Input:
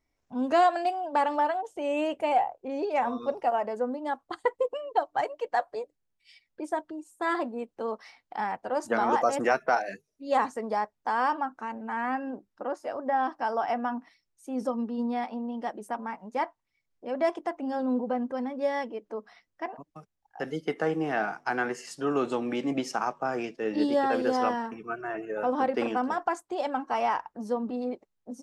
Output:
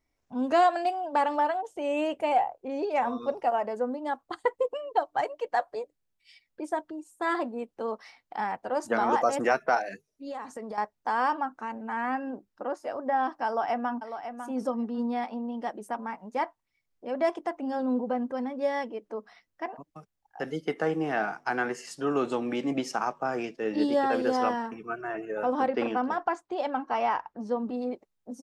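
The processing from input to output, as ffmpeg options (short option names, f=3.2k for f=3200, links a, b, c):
-filter_complex "[0:a]asettb=1/sr,asplit=3[a][b][c];[a]atrim=end=9.884[d];[b]atrim=start=9.88:end=10.78,asetpts=PTS-STARTPTS,afade=t=in:d=0.004:c=qsin,afade=t=out:st=0.896:d=0.004:c=qsin,acompressor=threshold=-33dB:ratio=16:attack=3.2:release=140:knee=1:detection=peak[e];[c]atrim=start=10.776[f];[d][e]acrossfade=d=0.004:c1=hsin:c2=qsin[g];[g][f]acrossfade=d=0.004:c1=qsin:c2=hsin,asplit=2[h][i];[i]afade=t=in:st=13.46:d=0.01,afade=t=out:st=13.96:d=0.01,aecho=0:1:550|1100:0.354813|0.0354813[j];[h][j]amix=inputs=2:normalize=0,asettb=1/sr,asplit=3[k][l][m];[k]atrim=end=25.684[n];[l]atrim=start=25.68:end=27.58,asetpts=PTS-STARTPTS,afade=t=in:d=0.004:c=qsin,afade=t=out:st=1.896:d=0.004:c=qsin,lowpass=4.8k[o];[m]atrim=start=27.576[p];[n][o]acrossfade=d=0.004:c1=hsin:c2=qsin[q];[q][p]acrossfade=d=0.004:c1=qsin:c2=hsin"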